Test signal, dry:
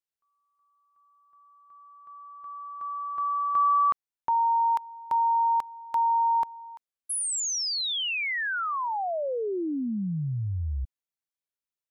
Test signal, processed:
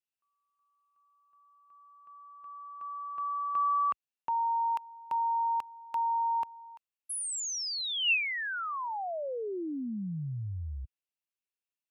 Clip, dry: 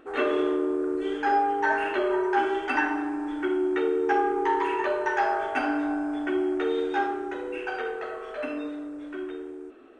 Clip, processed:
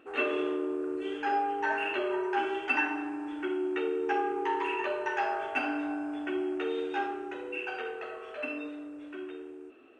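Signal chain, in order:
high-pass filter 64 Hz 12 dB per octave
parametric band 2,700 Hz +11.5 dB 0.26 octaves
level −6 dB

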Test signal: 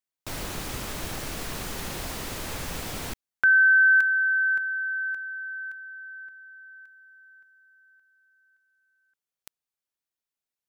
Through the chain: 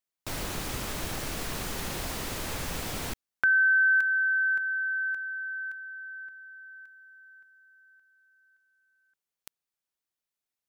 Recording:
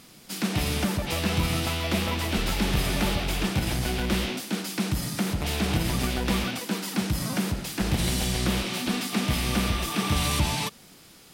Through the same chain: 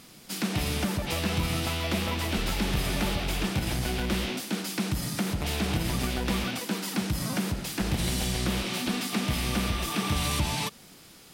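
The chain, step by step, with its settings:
downward compressor 1.5 to 1, threshold −28 dBFS

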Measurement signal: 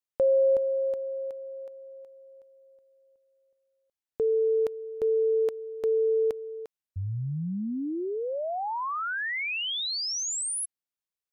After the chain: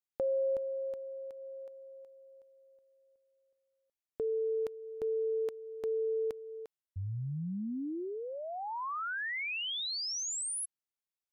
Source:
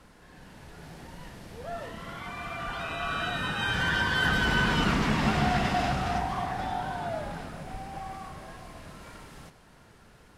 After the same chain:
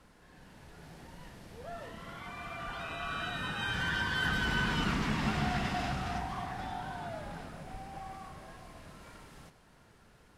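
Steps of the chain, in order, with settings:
dynamic equaliser 570 Hz, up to −4 dB, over −37 dBFS, Q 1.3
level −5.5 dB

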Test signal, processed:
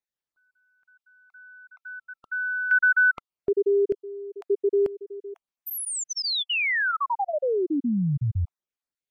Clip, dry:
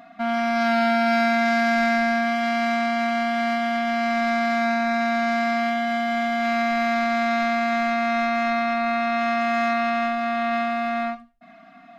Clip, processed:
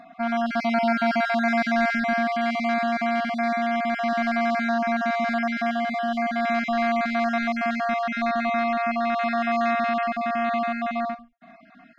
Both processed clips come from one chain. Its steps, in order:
time-frequency cells dropped at random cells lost 28%
high-shelf EQ 6,600 Hz −10 dB

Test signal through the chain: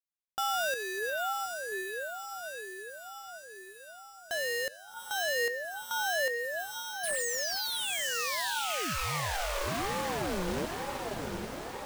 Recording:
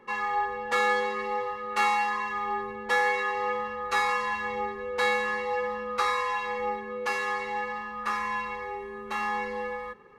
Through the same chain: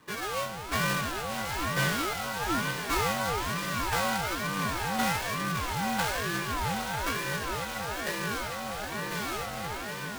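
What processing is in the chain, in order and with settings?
each half-wave held at its own peak
feedback delay with all-pass diffusion 771 ms, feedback 63%, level −4 dB
ring modulator whose carrier an LFO sweeps 480 Hz, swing 45%, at 1.1 Hz
level −5 dB

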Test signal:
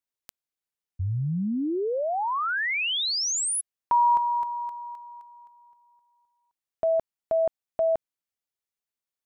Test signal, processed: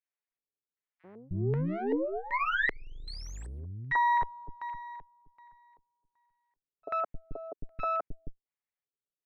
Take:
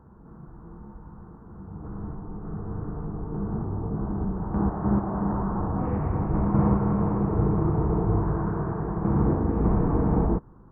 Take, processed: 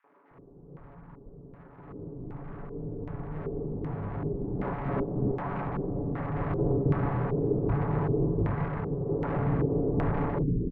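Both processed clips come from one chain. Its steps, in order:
lower of the sound and its delayed copy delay 7 ms
three-band delay without the direct sound highs, mids, lows 40/310 ms, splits 310/1,700 Hz
auto-filter low-pass square 1.3 Hz 410–2,000 Hz
level −2.5 dB

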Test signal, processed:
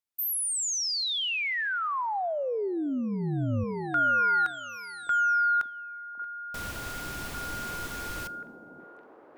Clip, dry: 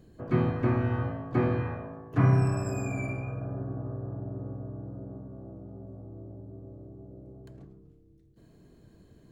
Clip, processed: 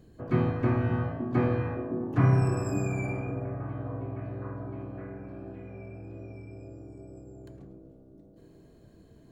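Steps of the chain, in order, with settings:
echo through a band-pass that steps 563 ms, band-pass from 250 Hz, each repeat 0.7 octaves, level −3.5 dB
coupled-rooms reverb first 0.67 s, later 2.4 s, from −18 dB, DRR 19.5 dB

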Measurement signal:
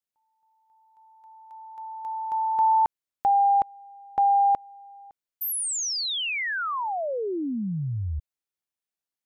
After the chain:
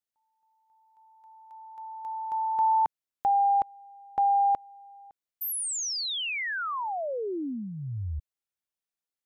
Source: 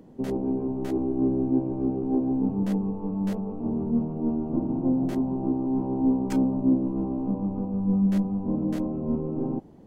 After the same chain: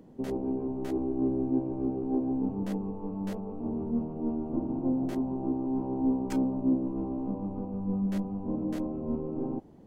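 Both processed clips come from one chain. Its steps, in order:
dynamic equaliser 170 Hz, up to −6 dB, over −39 dBFS, Q 2
level −3 dB

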